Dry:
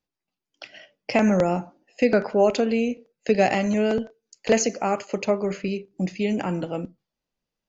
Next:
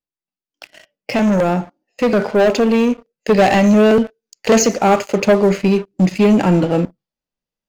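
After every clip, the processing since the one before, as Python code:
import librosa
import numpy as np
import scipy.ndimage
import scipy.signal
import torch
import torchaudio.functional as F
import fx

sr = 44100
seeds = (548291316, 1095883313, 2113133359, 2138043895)

y = fx.hpss(x, sr, part='percussive', gain_db=-6)
y = fx.leveller(y, sr, passes=3)
y = fx.rider(y, sr, range_db=10, speed_s=2.0)
y = y * 10.0 ** (2.0 / 20.0)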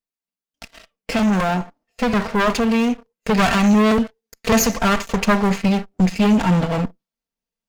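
y = fx.lower_of_two(x, sr, delay_ms=4.4)
y = fx.dynamic_eq(y, sr, hz=410.0, q=1.2, threshold_db=-27.0, ratio=4.0, max_db=-8)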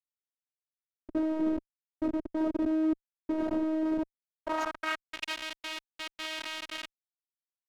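y = fx.schmitt(x, sr, flips_db=-16.5)
y = fx.filter_sweep_bandpass(y, sr, from_hz=310.0, to_hz=3000.0, start_s=3.9, end_s=5.23, q=1.6)
y = fx.robotise(y, sr, hz=314.0)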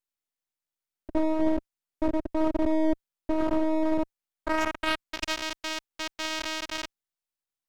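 y = np.maximum(x, 0.0)
y = y * 10.0 ** (6.5 / 20.0)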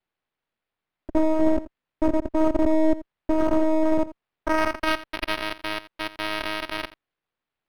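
y = x + 10.0 ** (-16.5 / 20.0) * np.pad(x, (int(84 * sr / 1000.0), 0))[:len(x)]
y = np.interp(np.arange(len(y)), np.arange(len(y))[::6], y[::6])
y = y * 10.0 ** (5.0 / 20.0)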